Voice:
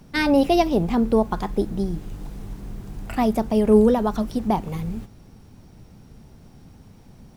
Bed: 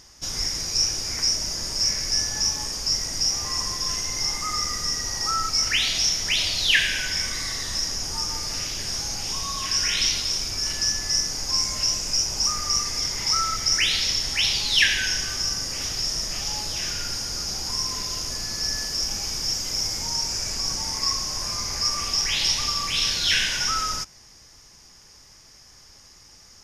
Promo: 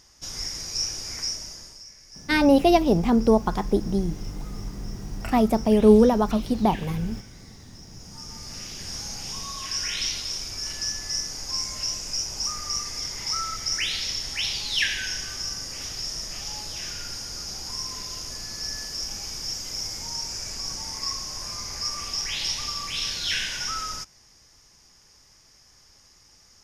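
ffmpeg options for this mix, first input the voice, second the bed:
-filter_complex "[0:a]adelay=2150,volume=0.5dB[a];[1:a]volume=12dB,afade=t=out:st=1.15:d=0.69:silence=0.133352,afade=t=in:st=7.88:d=1.15:silence=0.133352[b];[a][b]amix=inputs=2:normalize=0"

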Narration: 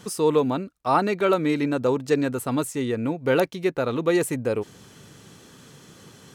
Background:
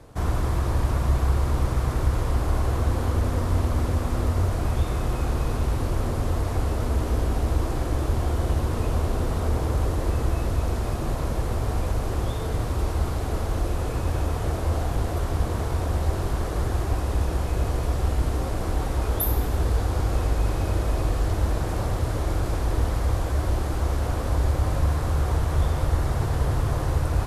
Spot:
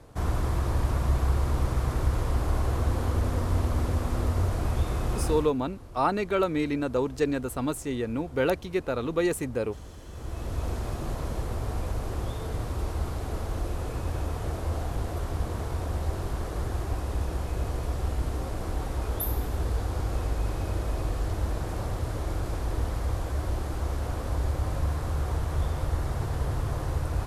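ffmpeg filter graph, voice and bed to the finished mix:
-filter_complex "[0:a]adelay=5100,volume=-4.5dB[a];[1:a]volume=12dB,afade=t=out:st=5.28:d=0.24:silence=0.133352,afade=t=in:st=10.09:d=0.57:silence=0.177828[b];[a][b]amix=inputs=2:normalize=0"

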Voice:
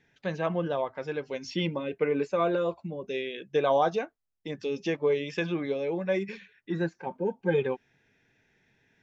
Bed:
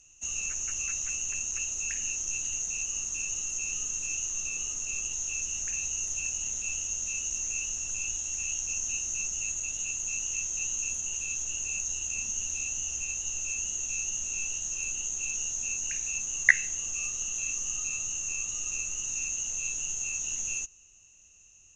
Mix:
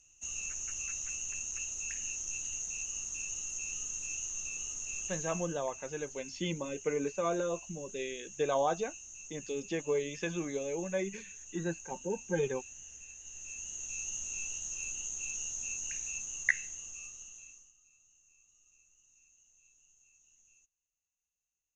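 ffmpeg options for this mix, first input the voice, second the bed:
-filter_complex "[0:a]adelay=4850,volume=-6dB[a];[1:a]volume=4.5dB,afade=t=out:st=5.12:d=0.47:silence=0.298538,afade=t=in:st=13.2:d=0.94:silence=0.298538,afade=t=out:st=16.02:d=1.71:silence=0.0421697[b];[a][b]amix=inputs=2:normalize=0"

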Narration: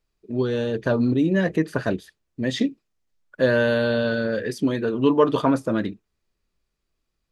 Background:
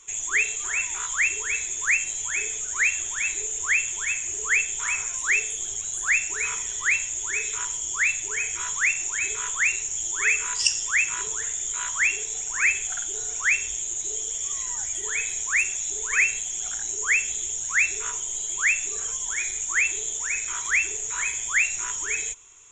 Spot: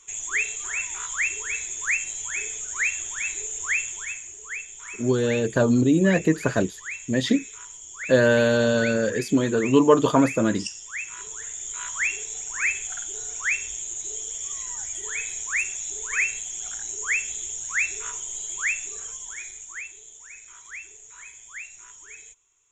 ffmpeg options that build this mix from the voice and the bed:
-filter_complex "[0:a]adelay=4700,volume=1.5dB[a];[1:a]volume=6.5dB,afade=t=out:st=3.8:d=0.56:silence=0.334965,afade=t=in:st=10.89:d=1.08:silence=0.354813,afade=t=out:st=18.52:d=1.41:silence=0.211349[b];[a][b]amix=inputs=2:normalize=0"

